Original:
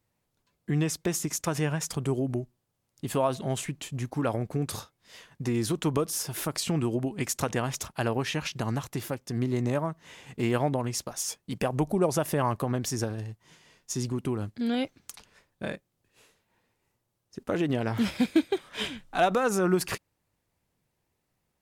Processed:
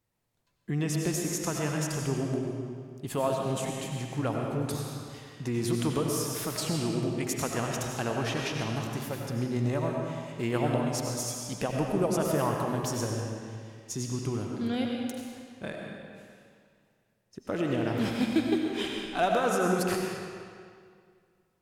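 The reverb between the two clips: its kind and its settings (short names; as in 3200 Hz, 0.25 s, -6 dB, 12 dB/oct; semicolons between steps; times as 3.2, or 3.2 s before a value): digital reverb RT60 2.1 s, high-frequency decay 0.85×, pre-delay 55 ms, DRR 0 dB; gain -3.5 dB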